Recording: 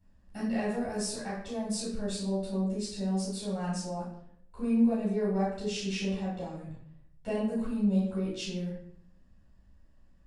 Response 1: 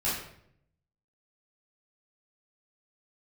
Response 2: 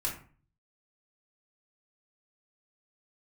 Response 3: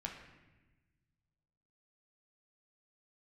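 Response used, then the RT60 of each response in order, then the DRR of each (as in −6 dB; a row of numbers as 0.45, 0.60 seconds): 1; 0.70, 0.40, 1.1 seconds; −10.0, −4.0, 0.0 decibels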